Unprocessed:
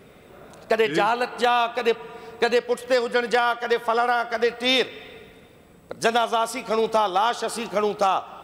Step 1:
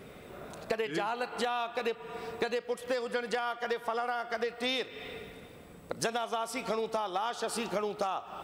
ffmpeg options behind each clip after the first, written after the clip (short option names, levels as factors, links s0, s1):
-af "acompressor=threshold=0.0316:ratio=6"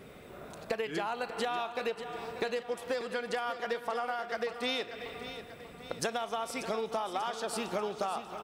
-af "aecho=1:1:589|1178|1767|2356|2945|3534:0.266|0.141|0.0747|0.0396|0.021|0.0111,volume=0.841"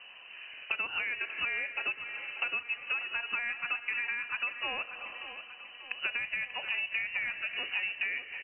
-af "lowpass=f=2600:t=q:w=0.5098,lowpass=f=2600:t=q:w=0.6013,lowpass=f=2600:t=q:w=0.9,lowpass=f=2600:t=q:w=2.563,afreqshift=-3100"